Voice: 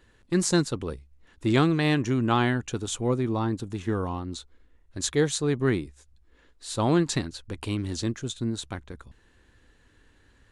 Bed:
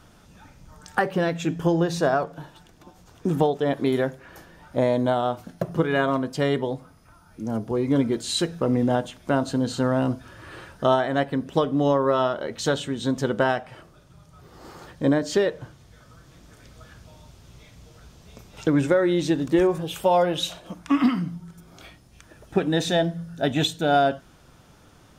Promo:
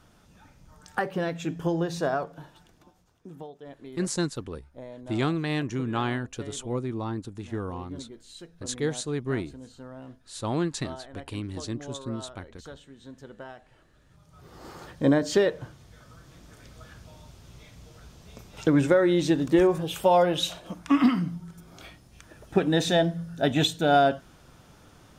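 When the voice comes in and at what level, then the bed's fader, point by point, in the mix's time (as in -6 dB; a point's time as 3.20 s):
3.65 s, -5.0 dB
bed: 2.75 s -5.5 dB
3.29 s -21 dB
13.55 s -21 dB
14.49 s -0.5 dB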